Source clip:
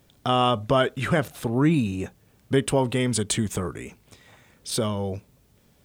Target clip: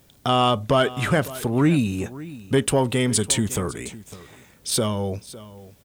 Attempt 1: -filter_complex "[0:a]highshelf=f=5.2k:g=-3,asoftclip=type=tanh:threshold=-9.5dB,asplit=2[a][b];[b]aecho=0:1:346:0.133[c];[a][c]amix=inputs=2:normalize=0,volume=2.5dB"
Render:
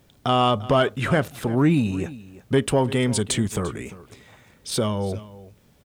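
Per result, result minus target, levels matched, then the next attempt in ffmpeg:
echo 0.21 s early; 8000 Hz band -5.5 dB
-filter_complex "[0:a]highshelf=f=5.2k:g=-3,asoftclip=type=tanh:threshold=-9.5dB,asplit=2[a][b];[b]aecho=0:1:556:0.133[c];[a][c]amix=inputs=2:normalize=0,volume=2.5dB"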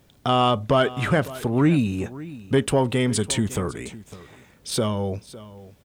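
8000 Hz band -5.0 dB
-filter_complex "[0:a]highshelf=f=5.2k:g=5.5,asoftclip=type=tanh:threshold=-9.5dB,asplit=2[a][b];[b]aecho=0:1:556:0.133[c];[a][c]amix=inputs=2:normalize=0,volume=2.5dB"

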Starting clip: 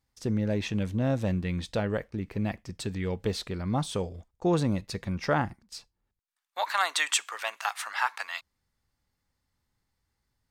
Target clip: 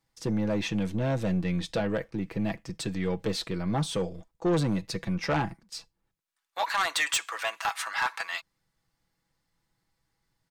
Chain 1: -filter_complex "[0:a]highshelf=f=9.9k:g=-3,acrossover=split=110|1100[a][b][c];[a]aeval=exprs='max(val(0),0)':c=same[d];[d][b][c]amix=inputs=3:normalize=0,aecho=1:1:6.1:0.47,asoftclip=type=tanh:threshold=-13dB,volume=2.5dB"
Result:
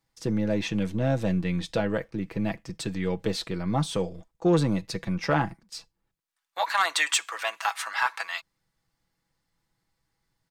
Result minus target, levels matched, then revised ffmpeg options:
soft clip: distortion -11 dB
-filter_complex "[0:a]highshelf=f=9.9k:g=-3,acrossover=split=110|1100[a][b][c];[a]aeval=exprs='max(val(0),0)':c=same[d];[d][b][c]amix=inputs=3:normalize=0,aecho=1:1:6.1:0.47,asoftclip=type=tanh:threshold=-22.5dB,volume=2.5dB"

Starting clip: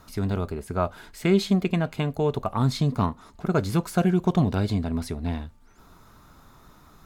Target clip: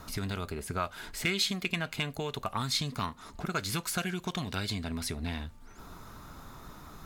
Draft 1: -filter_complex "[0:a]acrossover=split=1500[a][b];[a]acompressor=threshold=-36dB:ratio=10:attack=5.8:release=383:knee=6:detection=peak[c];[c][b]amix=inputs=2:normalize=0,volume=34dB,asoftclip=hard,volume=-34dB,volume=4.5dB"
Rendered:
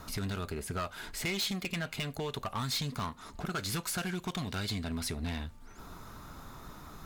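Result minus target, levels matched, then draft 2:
overloaded stage: distortion +19 dB
-filter_complex "[0:a]acrossover=split=1500[a][b];[a]acompressor=threshold=-36dB:ratio=10:attack=5.8:release=383:knee=6:detection=peak[c];[c][b]amix=inputs=2:normalize=0,volume=22dB,asoftclip=hard,volume=-22dB,volume=4.5dB"

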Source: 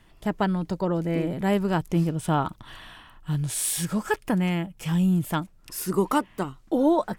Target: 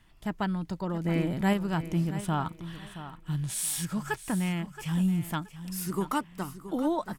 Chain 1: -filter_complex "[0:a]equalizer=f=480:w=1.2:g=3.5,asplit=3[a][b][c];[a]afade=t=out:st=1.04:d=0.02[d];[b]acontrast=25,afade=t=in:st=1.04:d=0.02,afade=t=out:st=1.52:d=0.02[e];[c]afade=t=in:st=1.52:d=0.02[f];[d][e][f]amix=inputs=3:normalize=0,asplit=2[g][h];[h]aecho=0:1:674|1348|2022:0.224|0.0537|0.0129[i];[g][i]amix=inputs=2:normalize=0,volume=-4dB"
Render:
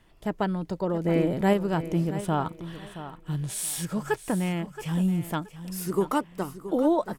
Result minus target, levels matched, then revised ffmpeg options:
500 Hz band +5.5 dB
-filter_complex "[0:a]equalizer=f=480:w=1.2:g=-7,asplit=3[a][b][c];[a]afade=t=out:st=1.04:d=0.02[d];[b]acontrast=25,afade=t=in:st=1.04:d=0.02,afade=t=out:st=1.52:d=0.02[e];[c]afade=t=in:st=1.52:d=0.02[f];[d][e][f]amix=inputs=3:normalize=0,asplit=2[g][h];[h]aecho=0:1:674|1348|2022:0.224|0.0537|0.0129[i];[g][i]amix=inputs=2:normalize=0,volume=-4dB"

